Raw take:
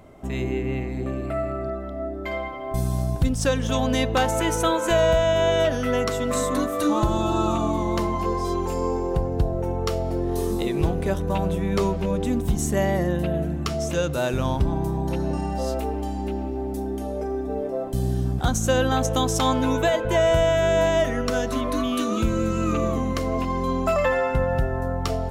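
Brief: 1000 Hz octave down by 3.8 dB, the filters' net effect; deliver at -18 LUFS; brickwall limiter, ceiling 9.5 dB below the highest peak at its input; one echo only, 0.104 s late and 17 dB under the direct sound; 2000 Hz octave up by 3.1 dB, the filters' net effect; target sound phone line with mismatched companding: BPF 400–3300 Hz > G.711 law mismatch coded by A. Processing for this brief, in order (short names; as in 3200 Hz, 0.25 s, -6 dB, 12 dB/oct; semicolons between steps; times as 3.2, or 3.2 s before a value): bell 1000 Hz -6.5 dB; bell 2000 Hz +6.5 dB; limiter -18.5 dBFS; BPF 400–3300 Hz; echo 0.104 s -17 dB; G.711 law mismatch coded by A; gain +15 dB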